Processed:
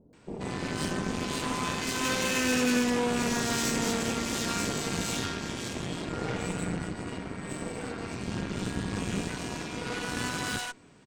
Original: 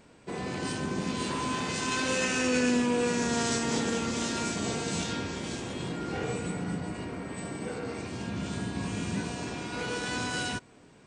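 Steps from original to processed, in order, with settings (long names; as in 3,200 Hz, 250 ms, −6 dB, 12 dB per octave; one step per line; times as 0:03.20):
multiband delay without the direct sound lows, highs 130 ms, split 590 Hz
harmonic generator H 8 −17 dB, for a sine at −15 dBFS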